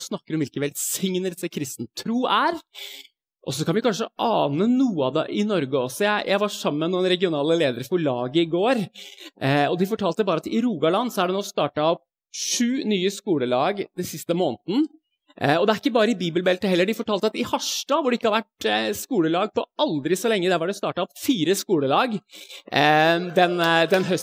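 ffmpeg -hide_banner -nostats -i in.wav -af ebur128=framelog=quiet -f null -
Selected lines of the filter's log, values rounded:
Integrated loudness:
  I:         -22.6 LUFS
  Threshold: -32.9 LUFS
Loudness range:
  LRA:         2.7 LU
  Threshold: -43.1 LUFS
  LRA low:   -24.4 LUFS
  LRA high:  -21.7 LUFS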